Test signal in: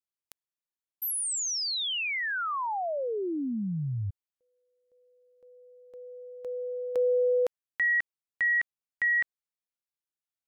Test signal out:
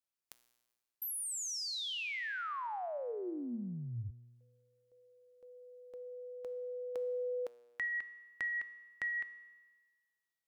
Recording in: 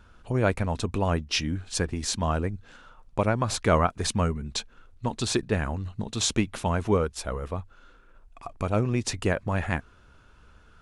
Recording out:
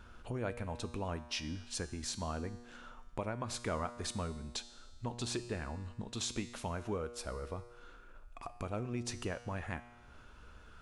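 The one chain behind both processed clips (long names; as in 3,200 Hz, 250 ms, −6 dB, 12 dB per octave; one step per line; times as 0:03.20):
parametric band 130 Hz −3.5 dB 0.77 octaves
downward compressor 2 to 1, threshold −46 dBFS
tuned comb filter 120 Hz, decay 1.4 s, harmonics all, mix 70%
level +9.5 dB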